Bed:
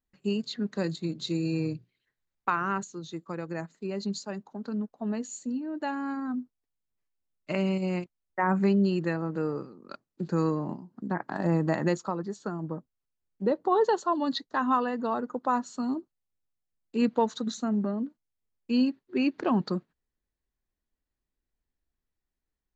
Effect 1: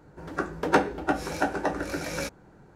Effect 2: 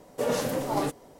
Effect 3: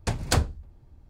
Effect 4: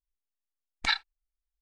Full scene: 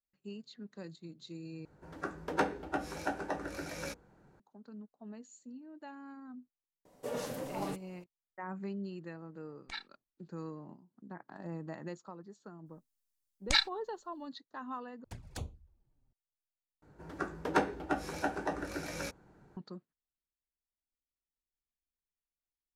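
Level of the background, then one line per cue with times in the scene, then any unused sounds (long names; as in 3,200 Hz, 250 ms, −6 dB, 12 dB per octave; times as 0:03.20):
bed −16.5 dB
0:01.65: overwrite with 1 −9 dB + mains-hum notches 60/120/180/240/300/360/420/480 Hz
0:06.85: mix in 2 −11 dB
0:08.85: mix in 4 −16 dB
0:12.66: mix in 4 −3.5 dB + bass and treble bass +9 dB, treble +11 dB
0:15.04: overwrite with 3 −18 dB + flanger swept by the level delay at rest 9.4 ms, full sweep at −21 dBFS
0:16.82: overwrite with 1 −7.5 dB + notch filter 530 Hz, Q 17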